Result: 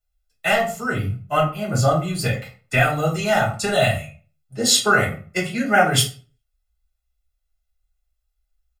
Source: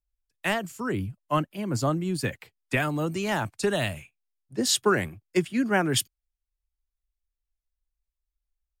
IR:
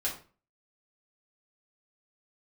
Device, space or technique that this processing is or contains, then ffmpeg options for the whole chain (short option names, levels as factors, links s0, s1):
microphone above a desk: -filter_complex "[0:a]aecho=1:1:1.5:0.72[s0];[1:a]atrim=start_sample=2205[s1];[s0][s1]afir=irnorm=-1:irlink=0,volume=1.26"